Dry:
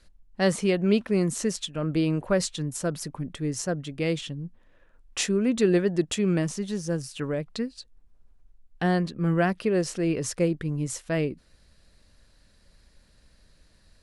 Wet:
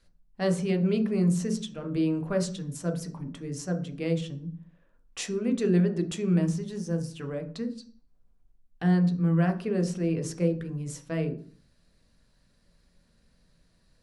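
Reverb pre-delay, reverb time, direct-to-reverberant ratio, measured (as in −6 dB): 3 ms, 0.45 s, 4.0 dB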